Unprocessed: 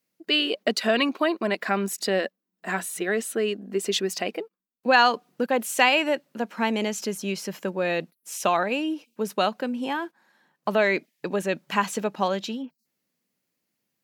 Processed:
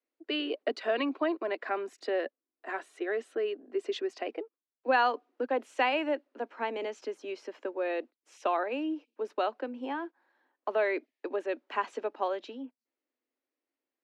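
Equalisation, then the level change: steep high-pass 260 Hz 72 dB/octave; tape spacing loss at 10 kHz 29 dB; -4.0 dB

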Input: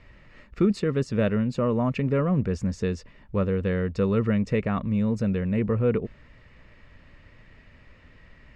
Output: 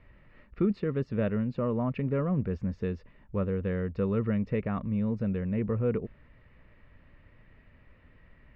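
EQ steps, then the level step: distance through air 330 m; -4.5 dB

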